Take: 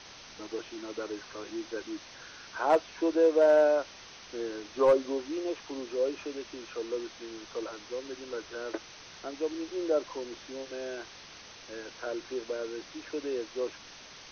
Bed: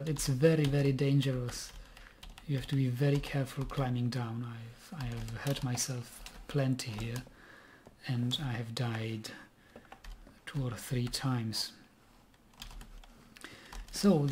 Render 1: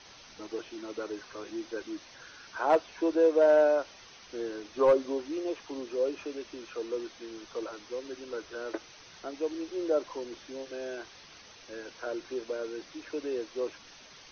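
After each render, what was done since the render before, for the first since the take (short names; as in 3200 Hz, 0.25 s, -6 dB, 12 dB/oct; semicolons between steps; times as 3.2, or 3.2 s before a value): denoiser 6 dB, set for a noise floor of -50 dBFS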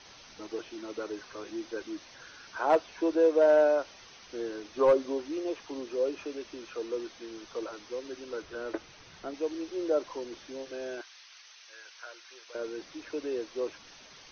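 8.42–9.34 tone controls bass +6 dB, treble -4 dB; 11.01–12.55 HPF 1400 Hz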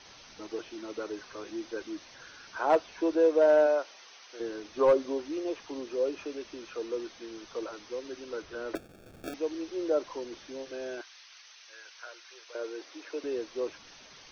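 3.66–4.39 HPF 300 Hz -> 650 Hz; 8.75–9.34 sample-rate reducer 1000 Hz; 12.08–13.24 HPF 320 Hz 24 dB/oct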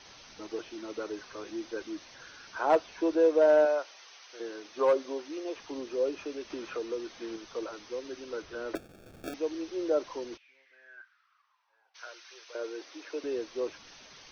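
3.65–5.56 HPF 430 Hz 6 dB/oct; 6.5–7.36 three-band squash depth 70%; 10.36–11.94 band-pass 2600 Hz -> 760 Hz, Q 8.7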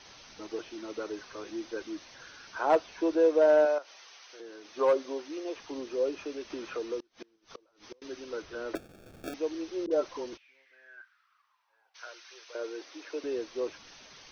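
3.78–4.7 compressor 2:1, threshold -47 dBFS; 6.99–8.02 flipped gate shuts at -32 dBFS, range -30 dB; 9.86–10.33 dispersion highs, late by 51 ms, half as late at 560 Hz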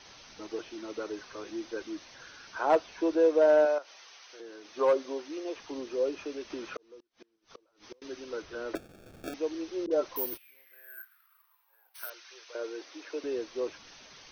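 6.77–7.98 fade in; 10.16–12.1 careless resampling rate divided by 3×, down filtered, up zero stuff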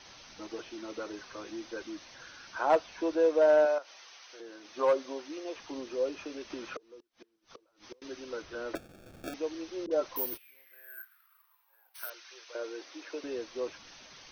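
notch 430 Hz, Q 12; dynamic EQ 350 Hz, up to -4 dB, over -40 dBFS, Q 2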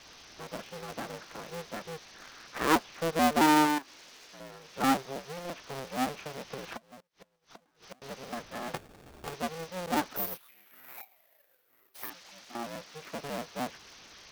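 cycle switcher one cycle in 2, inverted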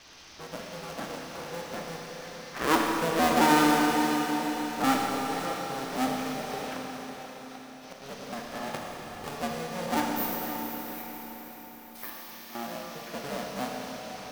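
diffused feedback echo 0.546 s, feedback 54%, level -10 dB; Schroeder reverb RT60 3.4 s, combs from 27 ms, DRR -0.5 dB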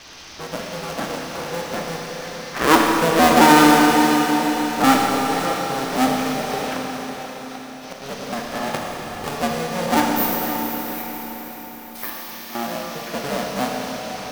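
gain +10 dB; limiter -1 dBFS, peak gain reduction 1 dB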